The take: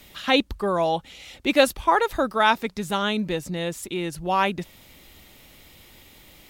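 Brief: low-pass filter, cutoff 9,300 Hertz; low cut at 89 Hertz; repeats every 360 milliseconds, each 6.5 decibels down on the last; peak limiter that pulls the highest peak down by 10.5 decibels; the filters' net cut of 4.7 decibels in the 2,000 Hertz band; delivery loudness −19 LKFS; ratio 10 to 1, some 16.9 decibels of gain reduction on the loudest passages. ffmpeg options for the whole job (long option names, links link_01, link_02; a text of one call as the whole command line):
ffmpeg -i in.wav -af "highpass=89,lowpass=9300,equalizer=frequency=2000:width_type=o:gain=-6.5,acompressor=threshold=-30dB:ratio=10,alimiter=level_in=6dB:limit=-24dB:level=0:latency=1,volume=-6dB,aecho=1:1:360|720|1080|1440|1800|2160:0.473|0.222|0.105|0.0491|0.0231|0.0109,volume=20dB" out.wav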